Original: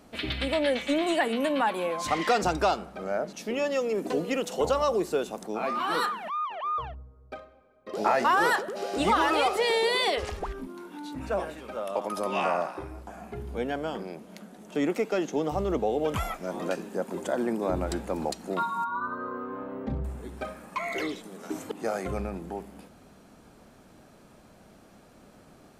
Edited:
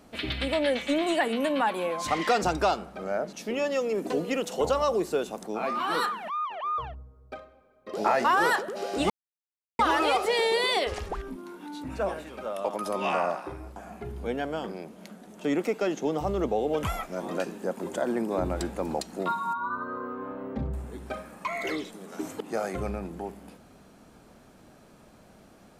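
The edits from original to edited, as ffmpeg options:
-filter_complex "[0:a]asplit=2[s0][s1];[s0]atrim=end=9.1,asetpts=PTS-STARTPTS,afade=t=out:st=9.096:d=0.004:c=hsin,apad=pad_dur=0.69[s2];[s1]atrim=start=9.1,asetpts=PTS-STARTPTS,afade=t=in:d=0.004:c=hsin[s3];[s2][s3]concat=n=2:v=0:a=1"

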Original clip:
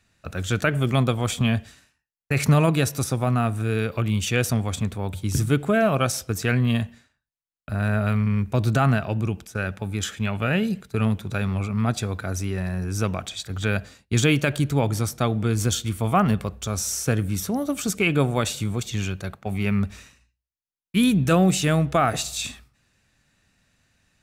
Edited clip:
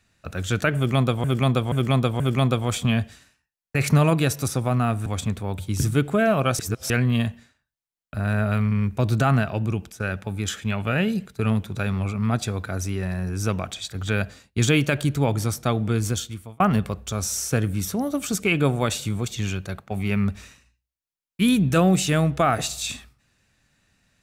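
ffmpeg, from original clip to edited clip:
-filter_complex "[0:a]asplit=8[s0][s1][s2][s3][s4][s5][s6][s7];[s0]atrim=end=1.242[s8];[s1]atrim=start=0.758:end=1.242[s9];[s2]atrim=start=0.758:end=1.242[s10];[s3]atrim=start=0.758:end=3.622[s11];[s4]atrim=start=4.608:end=6.142[s12];[s5]atrim=start=6.138:end=6.452,asetpts=PTS-STARTPTS,areverse[s13];[s6]atrim=start=6.448:end=16.15,asetpts=PTS-STARTPTS,afade=t=out:st=9.062:d=0.64[s14];[s7]atrim=start=16.15,asetpts=PTS-STARTPTS,afade=t=in:d=0.004:c=hsin[s15];[s8][s9]acrossfade=d=0.004:c1=hsin:c2=hsin[s16];[s16][s10]acrossfade=d=0.004:c1=hsin:c2=hsin[s17];[s17][s11]acrossfade=d=0.004:c1=hsin:c2=hsin[s18];[s18][s12]acrossfade=d=0.004:c1=hsin:c2=hsin[s19];[s19][s13]acrossfade=d=0.004:c1=hsin:c2=hsin[s20];[s14][s15]concat=n=2:v=0:a=1[s21];[s20][s21]acrossfade=d=0.004:c1=hsin:c2=hsin"

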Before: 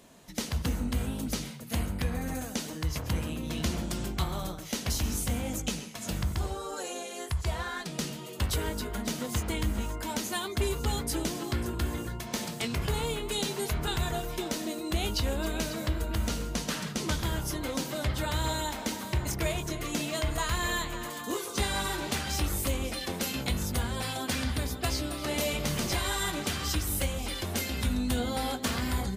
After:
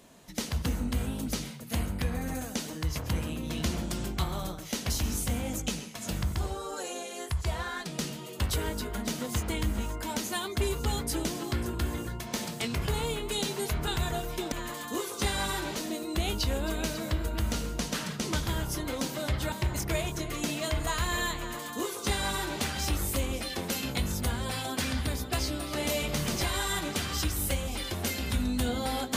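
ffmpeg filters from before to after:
-filter_complex "[0:a]asplit=4[s0][s1][s2][s3];[s0]atrim=end=14.522[s4];[s1]atrim=start=20.878:end=22.122[s5];[s2]atrim=start=14.518:end=18.282[s6];[s3]atrim=start=19.028[s7];[s4][s5]acrossfade=d=0.004:c1=hsin:c2=hsin[s8];[s8][s6]acrossfade=d=0.004:c1=hsin:c2=hsin[s9];[s9][s7]acrossfade=d=0.004:c1=hsin:c2=hsin"

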